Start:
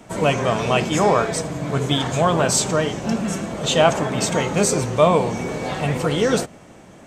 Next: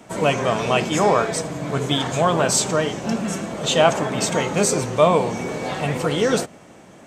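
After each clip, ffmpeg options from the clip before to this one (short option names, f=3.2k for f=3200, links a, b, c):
-af "lowshelf=f=76:g=-11.5"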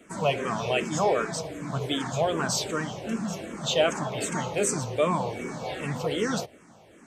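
-filter_complex "[0:a]asplit=2[a][b];[b]afreqshift=-2.6[c];[a][c]amix=inputs=2:normalize=1,volume=-4.5dB"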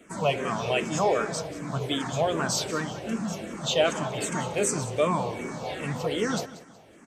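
-af "aecho=1:1:185|370|555:0.15|0.0449|0.0135"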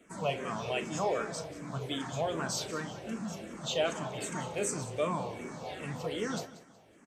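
-filter_complex "[0:a]asplit=2[a][b];[b]adelay=37,volume=-12.5dB[c];[a][c]amix=inputs=2:normalize=0,volume=-7.5dB"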